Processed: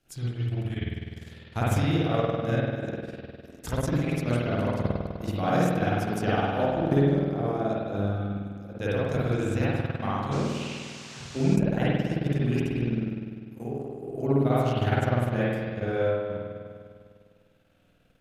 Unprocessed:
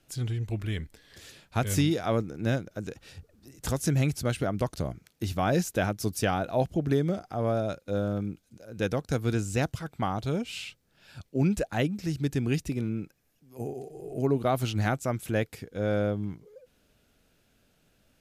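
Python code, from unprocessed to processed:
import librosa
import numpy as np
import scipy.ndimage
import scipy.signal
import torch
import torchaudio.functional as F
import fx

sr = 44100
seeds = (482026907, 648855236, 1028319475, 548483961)

y = fx.rev_spring(x, sr, rt60_s=2.1, pass_ms=(50,), chirp_ms=45, drr_db=-9.5)
y = fx.transient(y, sr, attack_db=4, sustain_db=-11)
y = fx.dmg_noise_band(y, sr, seeds[0], low_hz=580.0, high_hz=6900.0, level_db=-38.0, at=(10.31, 11.55), fade=0.02)
y = F.gain(torch.from_numpy(y), -7.5).numpy()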